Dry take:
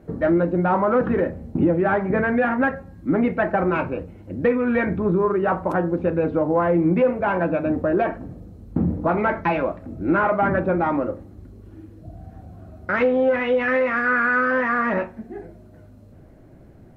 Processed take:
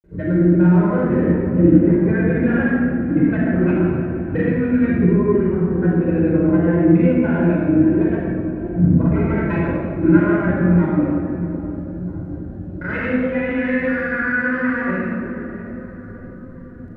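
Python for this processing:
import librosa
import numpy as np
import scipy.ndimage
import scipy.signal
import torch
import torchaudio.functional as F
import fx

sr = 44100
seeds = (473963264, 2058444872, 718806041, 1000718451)

y = fx.high_shelf(x, sr, hz=2000.0, db=-10.0)
y = fx.echo_filtered(y, sr, ms=637, feedback_pct=67, hz=1300.0, wet_db=-12.5)
y = fx.granulator(y, sr, seeds[0], grain_ms=100.0, per_s=20.0, spray_ms=100.0, spread_st=0)
y = fx.band_shelf(y, sr, hz=770.0, db=-9.5, octaves=1.7)
y = fx.room_shoebox(y, sr, seeds[1], volume_m3=3000.0, walls='mixed', distance_m=4.9)
y = y * librosa.db_to_amplitude(-1.5)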